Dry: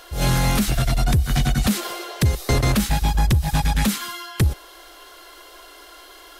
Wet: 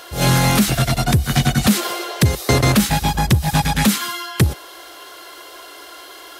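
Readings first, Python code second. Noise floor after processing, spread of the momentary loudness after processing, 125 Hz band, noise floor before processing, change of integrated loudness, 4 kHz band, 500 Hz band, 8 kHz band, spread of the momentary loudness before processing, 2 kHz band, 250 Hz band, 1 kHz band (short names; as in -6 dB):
-39 dBFS, 22 LU, +3.5 dB, -45 dBFS, +4.0 dB, +6.0 dB, +6.0 dB, +6.0 dB, 5 LU, +6.0 dB, +5.5 dB, +6.0 dB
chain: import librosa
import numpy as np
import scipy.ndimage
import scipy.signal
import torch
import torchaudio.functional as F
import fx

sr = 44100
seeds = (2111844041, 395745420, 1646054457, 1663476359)

y = scipy.signal.sosfilt(scipy.signal.butter(2, 100.0, 'highpass', fs=sr, output='sos'), x)
y = F.gain(torch.from_numpy(y), 6.0).numpy()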